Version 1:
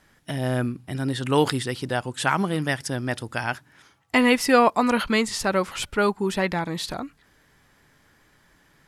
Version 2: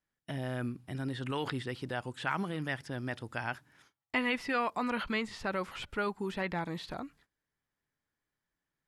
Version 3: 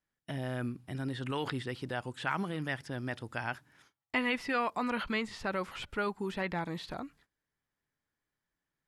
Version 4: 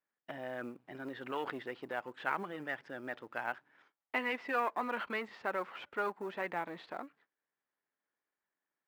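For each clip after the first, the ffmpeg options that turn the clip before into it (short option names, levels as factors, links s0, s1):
-filter_complex "[0:a]acrossover=split=3800[s0][s1];[s1]acompressor=threshold=0.00355:ratio=4:attack=1:release=60[s2];[s0][s2]amix=inputs=2:normalize=0,agate=range=0.0891:threshold=0.00224:ratio=16:detection=peak,acrossover=split=1200[s3][s4];[s3]alimiter=limit=0.106:level=0:latency=1[s5];[s5][s4]amix=inputs=2:normalize=0,volume=0.376"
-af anull
-af "aeval=exprs='if(lt(val(0),0),0.447*val(0),val(0))':c=same,highpass=360,lowpass=2200,acrusher=bits=8:mode=log:mix=0:aa=0.000001,volume=1.26"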